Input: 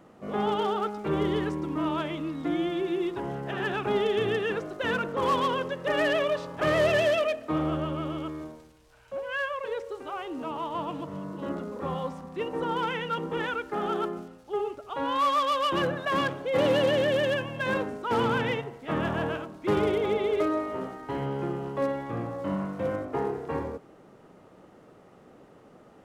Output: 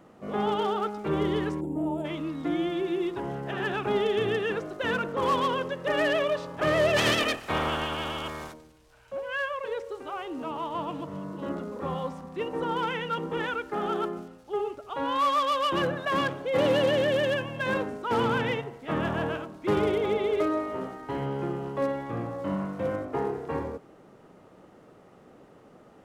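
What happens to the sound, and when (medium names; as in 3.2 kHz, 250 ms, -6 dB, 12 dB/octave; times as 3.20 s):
1.61–2.05 s: time-frequency box 930–6900 Hz -21 dB
6.96–8.52 s: spectral peaks clipped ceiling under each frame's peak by 25 dB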